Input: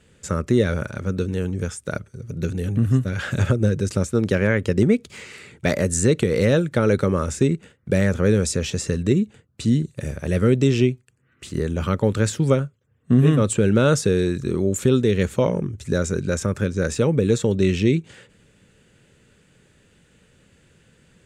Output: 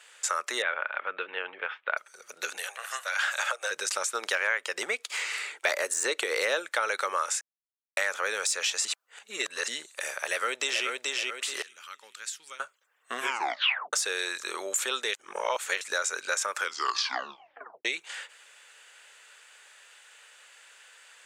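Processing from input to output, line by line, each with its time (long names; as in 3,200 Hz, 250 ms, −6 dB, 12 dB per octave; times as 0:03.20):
0:00.62–0:01.97: Butterworth low-pass 3,200 Hz 48 dB per octave
0:02.57–0:03.71: Butterworth high-pass 510 Hz
0:05.08–0:06.66: parametric band 340 Hz +8.5 dB 1.2 octaves
0:07.41–0:07.97: silence
0:08.85–0:09.68: reverse
0:10.25–0:10.87: delay throw 430 ms, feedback 35%, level −4.5 dB
0:11.62–0:12.60: guitar amp tone stack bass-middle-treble 6-0-2
0:13.19: tape stop 0.74 s
0:15.14–0:15.81: reverse
0:16.57: tape stop 1.28 s
whole clip: de-essing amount 45%; high-pass filter 800 Hz 24 dB per octave; downward compressor 2.5 to 1, threshold −36 dBFS; level +8.5 dB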